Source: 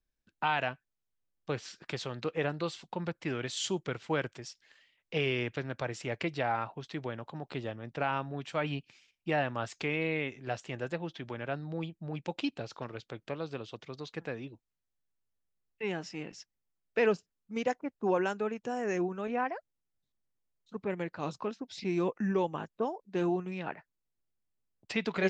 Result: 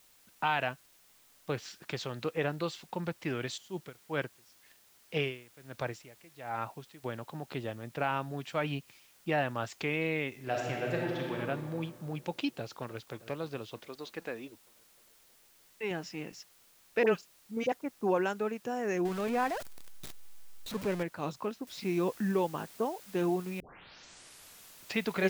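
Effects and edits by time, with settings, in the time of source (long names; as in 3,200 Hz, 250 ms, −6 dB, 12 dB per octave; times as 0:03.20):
0:03.56–0:07.03: tremolo with a sine in dB 2.9 Hz → 0.94 Hz, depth 25 dB
0:10.34–0:11.35: thrown reverb, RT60 2.2 s, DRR −2.5 dB
0:12.57–0:13.18: delay throw 310 ms, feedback 70%, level −17 dB
0:13.78–0:15.91: parametric band 130 Hz −14 dB
0:17.03–0:17.72: all-pass dispersion highs, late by 45 ms, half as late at 1,100 Hz
0:19.05–0:21.03: converter with a step at zero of −36 dBFS
0:21.67: noise floor change −63 dB −54 dB
0:23.60: tape start 1.34 s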